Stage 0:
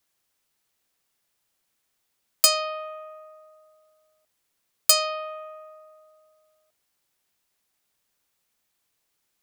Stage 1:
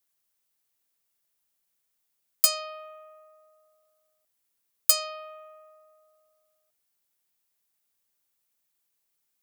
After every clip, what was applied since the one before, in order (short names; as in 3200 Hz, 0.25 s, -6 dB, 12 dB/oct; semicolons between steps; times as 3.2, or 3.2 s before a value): high shelf 8600 Hz +10 dB; gain -8.5 dB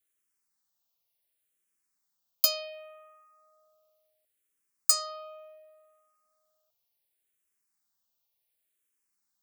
endless phaser -0.69 Hz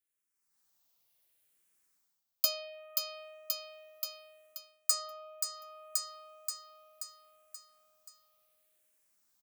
on a send: feedback echo 0.53 s, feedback 50%, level -8 dB; on the sum: AGC gain up to 13.5 dB; gain -8 dB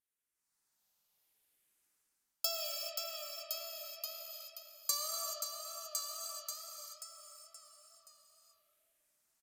wow and flutter 120 cents; downsampling 32000 Hz; non-linear reverb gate 0.45 s flat, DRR -0.5 dB; gain -4 dB